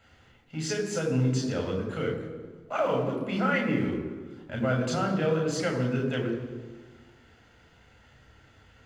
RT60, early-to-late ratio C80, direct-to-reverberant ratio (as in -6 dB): 1.5 s, 8.0 dB, 0.5 dB